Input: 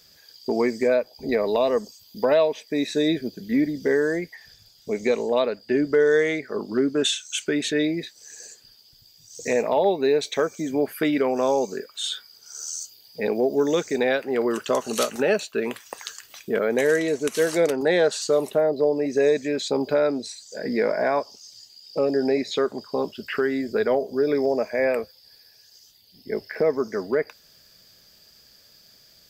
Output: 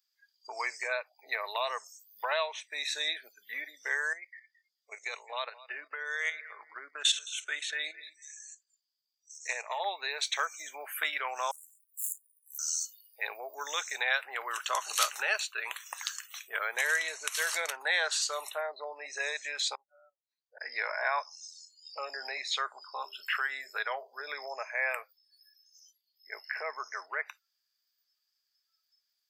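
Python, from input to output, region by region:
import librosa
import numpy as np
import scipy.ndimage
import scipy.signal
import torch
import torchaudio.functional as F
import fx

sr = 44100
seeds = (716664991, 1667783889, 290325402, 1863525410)

y = fx.chain(x, sr, fx.level_steps(step_db=12),
    fx.echo_feedback(ms=218, feedback_pct=29, wet_db=-18), at=(4.13, 9.8))
y = fx.chain(y, sr, fx.self_delay(depth_ms=0.29),
    fx.cheby2_bandstop(low_hz=190.0, high_hz=3900.0, order=4, stop_db=50), at=(11.51, 12.59))
y = fx.chain(y, sr, fx.bandpass_q(hz=530.0, q=0.83),
    fx.air_absorb(metres=200.0),
    fx.gate_flip(shuts_db=-26.0, range_db=-25), at=(19.75, 20.61))
y = fx.chain(y, sr, fx.highpass(hz=150.0, slope=12),
    fx.high_shelf(hz=9900.0, db=2.5),
    fx.hum_notches(base_hz=50, count=8), at=(22.72, 24.2))
y = fx.noise_reduce_blind(y, sr, reduce_db=27)
y = scipy.signal.sosfilt(scipy.signal.butter(4, 960.0, 'highpass', fs=sr, output='sos'), y)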